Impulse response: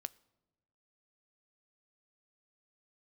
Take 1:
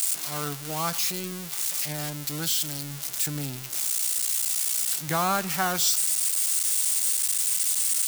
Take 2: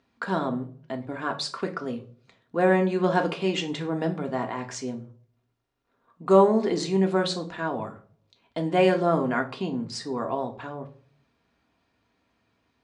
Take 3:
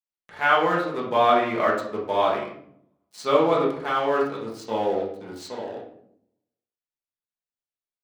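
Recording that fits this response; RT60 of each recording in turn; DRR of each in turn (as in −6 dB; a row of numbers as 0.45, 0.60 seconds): 1; non-exponential decay, 0.45 s, 0.65 s; 16.0, 3.0, −5.0 decibels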